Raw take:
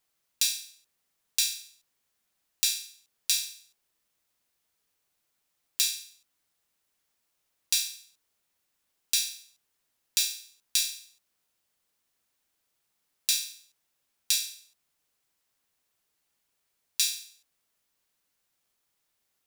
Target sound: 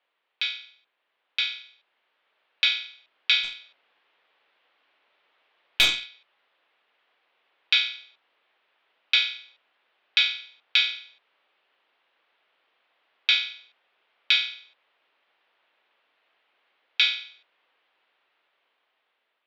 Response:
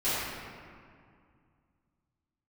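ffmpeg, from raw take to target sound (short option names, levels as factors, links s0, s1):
-filter_complex "[0:a]highpass=f=590:t=q:w=0.5412,highpass=f=590:t=q:w=1.307,lowpass=f=3500:t=q:w=0.5176,lowpass=f=3500:t=q:w=0.7071,lowpass=f=3500:t=q:w=1.932,afreqshift=-160,dynaudnorm=f=800:g=5:m=2.37,asplit=3[s0][s1][s2];[s0]afade=t=out:st=3.43:d=0.02[s3];[s1]aeval=exprs='0.224*(cos(1*acos(clip(val(0)/0.224,-1,1)))-cos(1*PI/2))+0.0126*(cos(5*acos(clip(val(0)/0.224,-1,1)))-cos(5*PI/2))+0.0178*(cos(8*acos(clip(val(0)/0.224,-1,1)))-cos(8*PI/2))':c=same,afade=t=in:st=3.43:d=0.02,afade=t=out:st=6.05:d=0.02[s4];[s2]afade=t=in:st=6.05:d=0.02[s5];[s3][s4][s5]amix=inputs=3:normalize=0,volume=2.51"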